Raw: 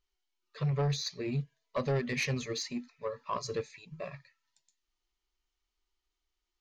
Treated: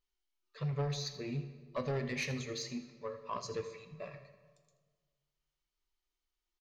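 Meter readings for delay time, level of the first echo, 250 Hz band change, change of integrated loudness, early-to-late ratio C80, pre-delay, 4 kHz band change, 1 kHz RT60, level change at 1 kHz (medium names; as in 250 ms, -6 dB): 81 ms, -16.0 dB, -4.5 dB, -4.5 dB, 11.0 dB, 3 ms, -4.5 dB, 1.5 s, -4.5 dB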